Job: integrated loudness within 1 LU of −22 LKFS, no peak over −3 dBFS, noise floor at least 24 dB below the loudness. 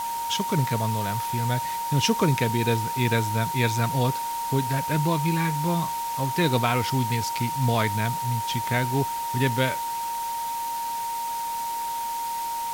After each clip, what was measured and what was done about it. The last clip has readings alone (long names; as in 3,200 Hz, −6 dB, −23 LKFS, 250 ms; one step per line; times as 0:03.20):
interfering tone 930 Hz; level of the tone −27 dBFS; background noise floor −30 dBFS; target noise floor −50 dBFS; integrated loudness −25.5 LKFS; sample peak −8.0 dBFS; target loudness −22.0 LKFS
→ notch filter 930 Hz, Q 30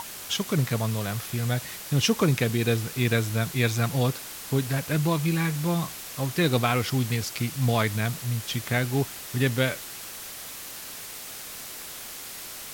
interfering tone none found; background noise floor −40 dBFS; target noise floor −51 dBFS
→ broadband denoise 11 dB, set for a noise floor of −40 dBFS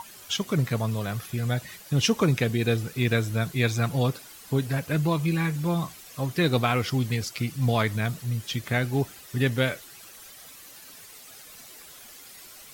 background noise floor −47 dBFS; target noise floor −51 dBFS
→ broadband denoise 6 dB, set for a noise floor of −47 dBFS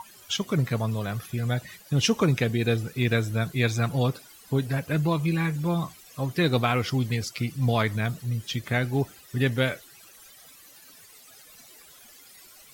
background noise floor −51 dBFS; integrated loudness −26.5 LKFS; sample peak −9.0 dBFS; target loudness −22.0 LKFS
→ level +4.5 dB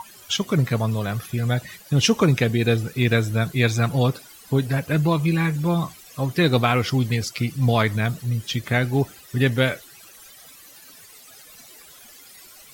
integrated loudness −22.0 LKFS; sample peak −4.5 dBFS; background noise floor −47 dBFS